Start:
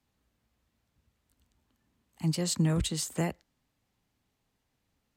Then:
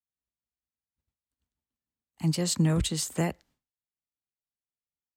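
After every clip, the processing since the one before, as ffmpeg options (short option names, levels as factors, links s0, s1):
-af "agate=range=0.0224:threshold=0.00126:ratio=3:detection=peak,volume=1.33"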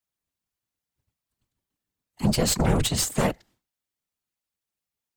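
-af "aeval=exprs='0.188*(cos(1*acos(clip(val(0)/0.188,-1,1)))-cos(1*PI/2))+0.0596*(cos(5*acos(clip(val(0)/0.188,-1,1)))-cos(5*PI/2))+0.0473*(cos(6*acos(clip(val(0)/0.188,-1,1)))-cos(6*PI/2))':c=same,afftfilt=real='hypot(re,im)*cos(2*PI*random(0))':imag='hypot(re,im)*sin(2*PI*random(1))':win_size=512:overlap=0.75,volume=1.78"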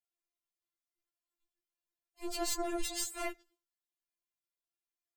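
-af "afftfilt=real='re*4*eq(mod(b,16),0)':imag='im*4*eq(mod(b,16),0)':win_size=2048:overlap=0.75,volume=0.398"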